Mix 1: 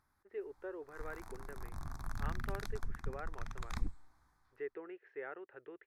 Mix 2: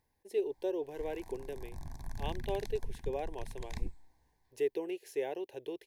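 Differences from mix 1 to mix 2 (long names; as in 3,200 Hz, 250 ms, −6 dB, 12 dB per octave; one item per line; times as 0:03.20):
speech: remove transistor ladder low-pass 2,000 Hz, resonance 65%
master: add Butterworth band-reject 1,300 Hz, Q 1.8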